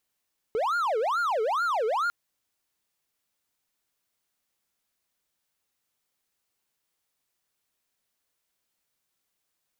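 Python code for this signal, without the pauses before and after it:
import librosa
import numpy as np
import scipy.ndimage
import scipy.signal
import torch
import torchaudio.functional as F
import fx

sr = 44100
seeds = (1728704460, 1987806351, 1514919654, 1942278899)

y = fx.siren(sr, length_s=1.55, kind='wail', low_hz=428.0, high_hz=1420.0, per_s=2.3, wave='triangle', level_db=-21.5)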